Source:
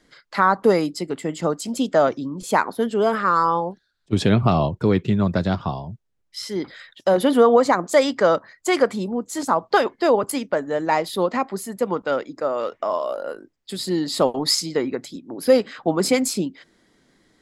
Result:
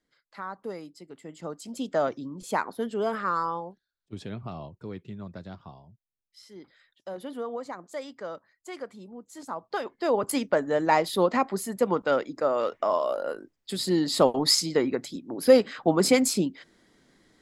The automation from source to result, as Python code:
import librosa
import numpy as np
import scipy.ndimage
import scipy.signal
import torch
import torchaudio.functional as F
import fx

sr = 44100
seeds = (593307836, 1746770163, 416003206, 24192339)

y = fx.gain(x, sr, db=fx.line((1.0, -20.0), (1.97, -8.5), (3.32, -8.5), (4.25, -20.0), (8.92, -20.0), (9.85, -13.0), (10.37, -1.5)))